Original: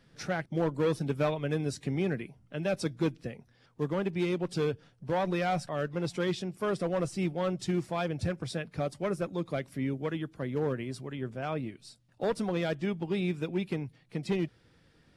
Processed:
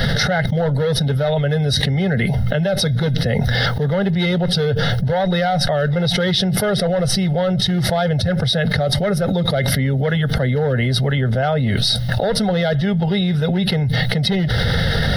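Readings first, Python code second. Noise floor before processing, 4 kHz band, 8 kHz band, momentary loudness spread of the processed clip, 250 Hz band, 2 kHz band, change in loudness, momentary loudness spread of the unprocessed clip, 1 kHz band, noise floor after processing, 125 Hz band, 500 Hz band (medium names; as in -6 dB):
-65 dBFS, +24.0 dB, +18.5 dB, 1 LU, +13.0 dB, +17.0 dB, +14.5 dB, 7 LU, +12.5 dB, -20 dBFS, +18.5 dB, +12.0 dB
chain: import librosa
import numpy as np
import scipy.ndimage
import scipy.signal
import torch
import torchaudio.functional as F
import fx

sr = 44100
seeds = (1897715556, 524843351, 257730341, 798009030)

y = fx.low_shelf(x, sr, hz=420.0, db=3.5)
y = fx.fixed_phaser(y, sr, hz=1600.0, stages=8)
y = fx.small_body(y, sr, hz=(2100.0, 3800.0), ring_ms=45, db=13)
y = fx.env_flatten(y, sr, amount_pct=100)
y = F.gain(torch.from_numpy(y), 7.5).numpy()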